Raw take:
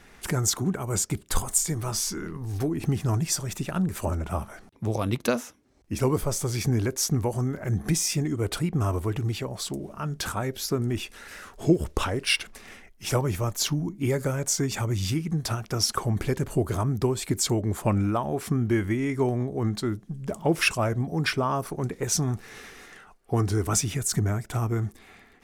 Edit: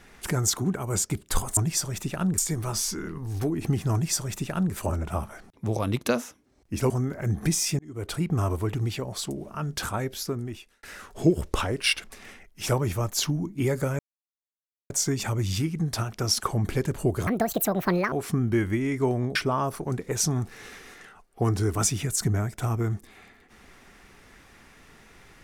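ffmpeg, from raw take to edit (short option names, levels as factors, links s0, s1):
-filter_complex "[0:a]asplit=10[s0][s1][s2][s3][s4][s5][s6][s7][s8][s9];[s0]atrim=end=1.572[s10];[s1]atrim=start=3.118:end=3.932[s11];[s2]atrim=start=1.568:end=6.092[s12];[s3]atrim=start=7.328:end=8.22,asetpts=PTS-STARTPTS,afade=t=out:st=0.888:d=0.004:c=hsin[s13];[s4]atrim=start=8.22:end=11.26,asetpts=PTS-STARTPTS,afade=t=in:d=0.45,afade=t=out:st=2.23:d=0.81[s14];[s5]atrim=start=11.26:end=14.42,asetpts=PTS-STARTPTS,afade=t=in:d=0.004:c=hsin,afade=t=out:st=3.156:d=0.004:c=hsin,apad=pad_dur=0.91[s15];[s6]atrim=start=14.42:end=16.794,asetpts=PTS-STARTPTS,afade=t=in:d=0.004:c=hsin[s16];[s7]atrim=start=16.79:end=18.3,asetpts=PTS-STARTPTS,asetrate=78057,aresample=44100,atrim=end_sample=37622,asetpts=PTS-STARTPTS[s17];[s8]atrim=start=18.296:end=19.532[s18];[s9]atrim=start=21.268[s19];[s10][s11]acrossfade=d=0.004:c1=hsin:c2=hsin[s20];[s20][s12]acrossfade=d=0.004:c1=hsin:c2=hsin[s21];[s13][s14][s15][s16]concat=n=4:v=0:a=1[s22];[s21][s22]acrossfade=d=0.004:c1=hsin:c2=hsin[s23];[s23][s17]acrossfade=d=0.004:c1=hsin:c2=hsin[s24];[s24][s18]acrossfade=d=0.004:c1=hsin:c2=hsin[s25];[s25][s19]acrossfade=d=0.004:c1=hsin:c2=hsin"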